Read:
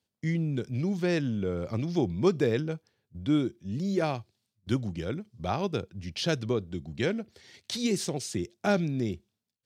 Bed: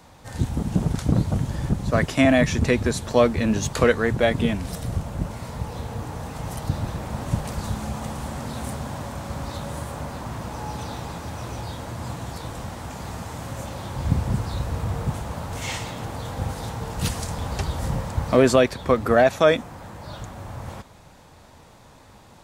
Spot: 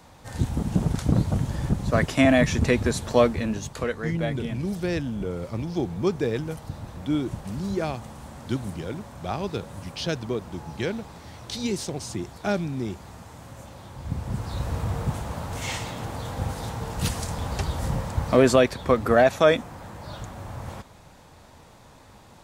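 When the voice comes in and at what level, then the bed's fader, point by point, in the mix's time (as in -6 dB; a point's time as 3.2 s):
3.80 s, 0.0 dB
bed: 3.21 s -1 dB
3.74 s -10 dB
14.03 s -10 dB
14.67 s -1 dB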